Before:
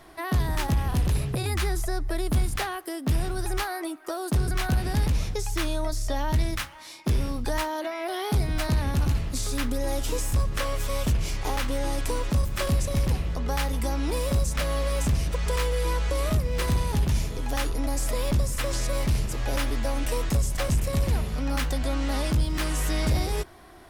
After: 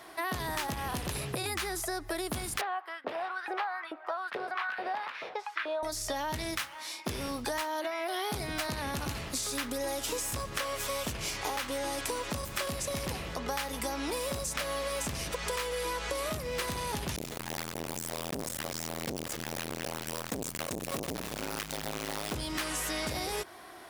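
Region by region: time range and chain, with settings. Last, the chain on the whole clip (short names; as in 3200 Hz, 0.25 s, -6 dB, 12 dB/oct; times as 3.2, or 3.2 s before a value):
2.61–5.83 air absorption 390 m + LFO high-pass saw up 2.3 Hz 450–1800 Hz
17.16–22.35 companded quantiser 4-bit + echo 0.294 s -14 dB + core saturation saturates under 290 Hz
whole clip: HPF 530 Hz 6 dB/oct; compressor, threshold -34 dBFS; gain +3.5 dB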